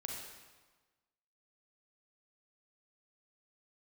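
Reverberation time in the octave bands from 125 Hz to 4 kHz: 1.4, 1.3, 1.3, 1.3, 1.2, 1.1 seconds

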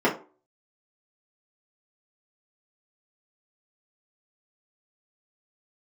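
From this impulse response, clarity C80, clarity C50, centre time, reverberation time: 16.5 dB, 11.0 dB, 22 ms, 0.40 s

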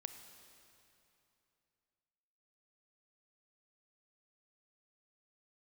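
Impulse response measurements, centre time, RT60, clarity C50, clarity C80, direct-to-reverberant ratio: 34 ms, 2.9 s, 8.0 dB, 9.0 dB, 7.5 dB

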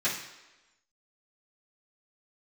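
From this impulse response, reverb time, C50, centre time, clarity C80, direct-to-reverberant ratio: 1.1 s, 5.5 dB, 37 ms, 8.5 dB, −14.0 dB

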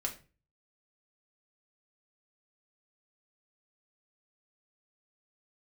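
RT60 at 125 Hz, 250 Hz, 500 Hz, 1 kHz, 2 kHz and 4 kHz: 0.60, 0.45, 0.40, 0.30, 0.30, 0.25 seconds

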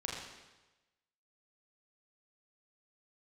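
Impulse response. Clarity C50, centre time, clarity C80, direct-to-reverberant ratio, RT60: 1.5 dB, 68 ms, 3.5 dB, −3.5 dB, 1.1 s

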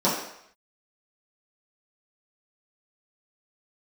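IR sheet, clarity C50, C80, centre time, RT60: 3.5 dB, 6.5 dB, 46 ms, 0.70 s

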